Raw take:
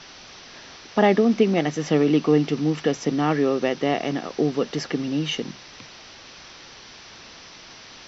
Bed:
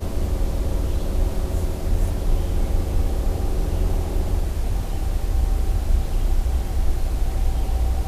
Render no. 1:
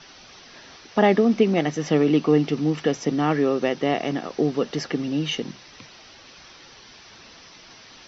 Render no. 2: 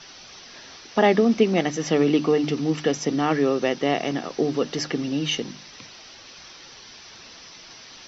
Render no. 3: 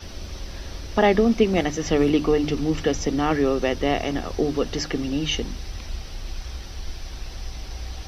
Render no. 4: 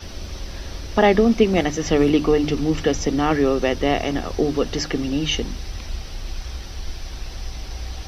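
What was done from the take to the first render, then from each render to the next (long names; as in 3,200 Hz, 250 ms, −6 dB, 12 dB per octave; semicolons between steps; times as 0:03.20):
broadband denoise 6 dB, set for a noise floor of −45 dBFS
high-shelf EQ 5,400 Hz +9 dB; mains-hum notches 50/100/150/200/250/300 Hz
mix in bed −12.5 dB
level +2.5 dB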